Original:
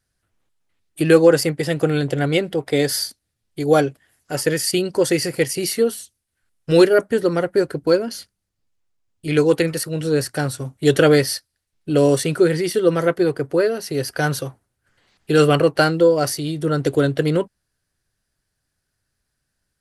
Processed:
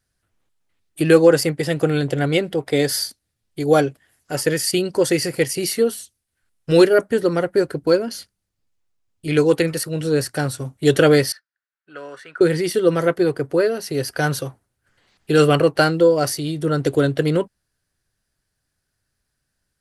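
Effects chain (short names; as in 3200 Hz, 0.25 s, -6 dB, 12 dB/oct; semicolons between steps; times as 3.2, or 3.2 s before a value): 11.32–12.41 band-pass 1500 Hz, Q 3.9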